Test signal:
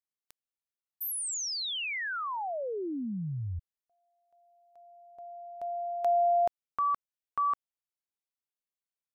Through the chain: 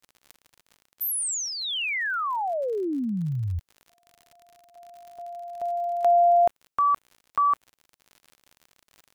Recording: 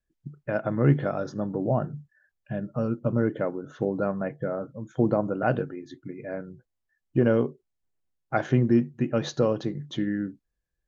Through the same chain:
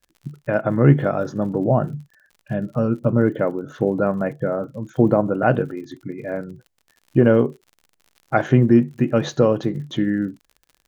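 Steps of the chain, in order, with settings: crackle 60/s -45 dBFS; dynamic EQ 4800 Hz, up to -6 dB, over -56 dBFS, Q 1.9; gain +7 dB

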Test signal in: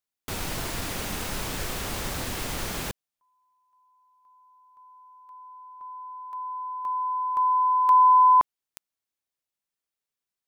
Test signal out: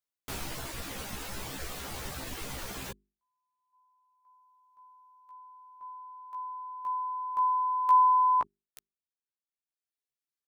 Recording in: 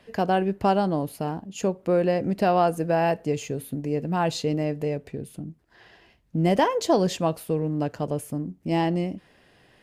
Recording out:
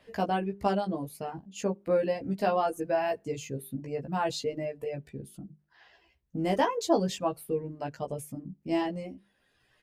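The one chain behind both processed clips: notches 50/100/150/200/250/300/350/400 Hz; reverb removal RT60 1.5 s; doubler 15 ms -2.5 dB; gain -6 dB

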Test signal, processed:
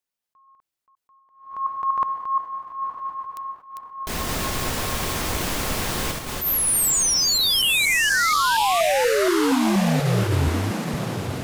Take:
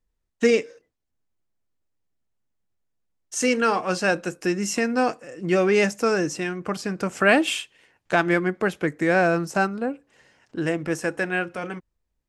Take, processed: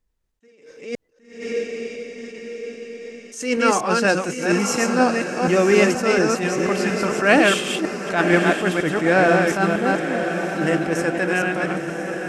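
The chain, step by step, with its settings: reverse delay 0.238 s, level -3.5 dB; diffused feedback echo 1.038 s, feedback 54%, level -8 dB; attack slew limiter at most 110 dB/s; gain +3 dB

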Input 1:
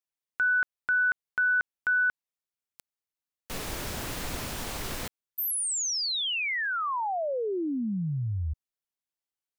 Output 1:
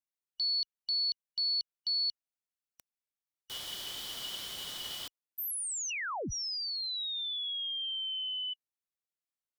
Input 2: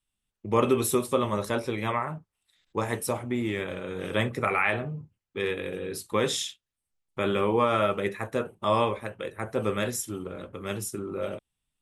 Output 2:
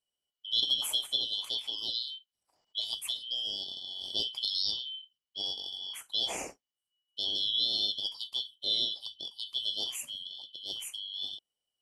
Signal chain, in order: four-band scrambler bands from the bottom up 3412; gain -6.5 dB

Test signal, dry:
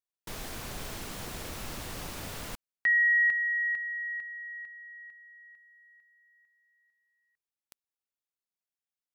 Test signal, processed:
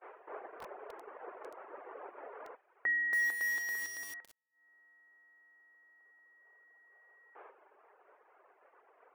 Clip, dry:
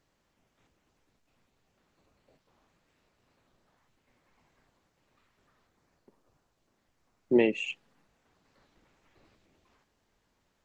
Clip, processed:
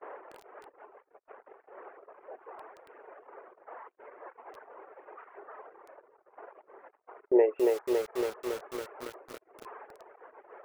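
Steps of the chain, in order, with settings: delta modulation 64 kbps, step -34.5 dBFS; reverb removal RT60 1.2 s; elliptic high-pass 400 Hz, stop band 70 dB; gate -44 dBFS, range -32 dB; Gaussian blur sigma 6.3 samples; lo-fi delay 0.279 s, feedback 80%, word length 8-bit, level -3 dB; gain +6 dB

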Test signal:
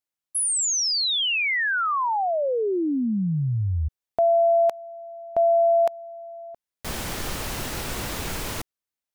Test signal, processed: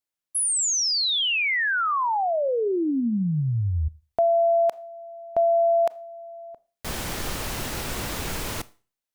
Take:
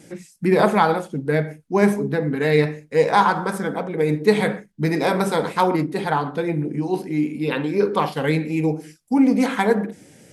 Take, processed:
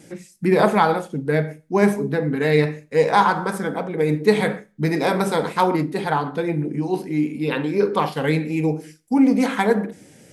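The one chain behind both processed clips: Schroeder reverb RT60 0.36 s, combs from 26 ms, DRR 19 dB

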